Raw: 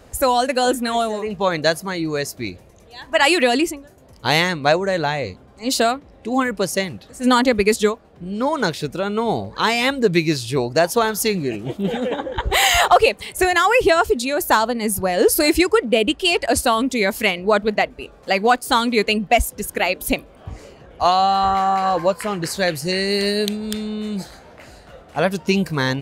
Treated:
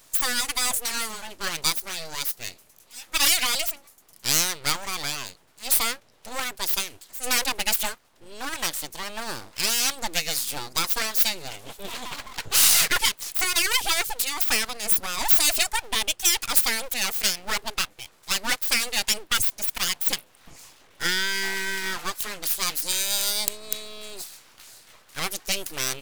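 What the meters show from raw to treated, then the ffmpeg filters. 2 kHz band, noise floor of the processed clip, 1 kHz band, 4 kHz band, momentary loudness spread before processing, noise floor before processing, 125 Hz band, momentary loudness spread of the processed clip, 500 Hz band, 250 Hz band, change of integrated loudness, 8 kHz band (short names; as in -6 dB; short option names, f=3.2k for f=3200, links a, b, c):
-6.0 dB, -57 dBFS, -14.0 dB, -1.0 dB, 11 LU, -47 dBFS, -16.5 dB, 15 LU, -20.5 dB, -20.0 dB, -4.5 dB, +4.5 dB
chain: -af "aeval=exprs='abs(val(0))':c=same,crystalizer=i=10:c=0,volume=-14.5dB"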